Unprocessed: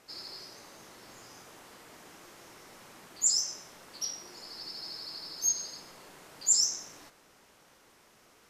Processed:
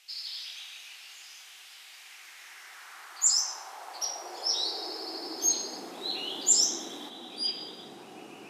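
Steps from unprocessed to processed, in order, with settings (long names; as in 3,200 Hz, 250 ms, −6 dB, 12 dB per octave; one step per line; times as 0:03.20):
high-pass filter sweep 2,900 Hz → 230 Hz, 0:01.83–0:05.79
delay with pitch and tempo change per echo 140 ms, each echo −5 semitones, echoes 2, each echo −6 dB
hollow resonant body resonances 360/750 Hz, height 10 dB, ringing for 20 ms
level +2 dB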